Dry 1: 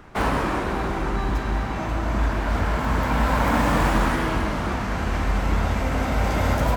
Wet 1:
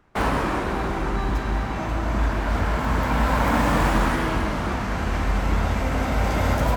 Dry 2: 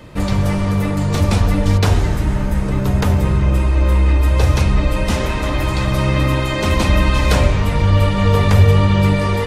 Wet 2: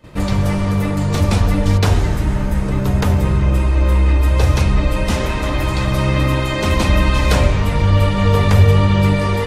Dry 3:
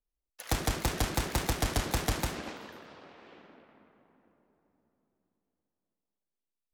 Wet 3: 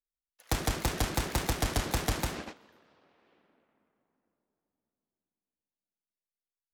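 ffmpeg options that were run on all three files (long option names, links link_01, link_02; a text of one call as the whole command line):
ffmpeg -i in.wav -af "agate=range=-14dB:threshold=-39dB:ratio=16:detection=peak" out.wav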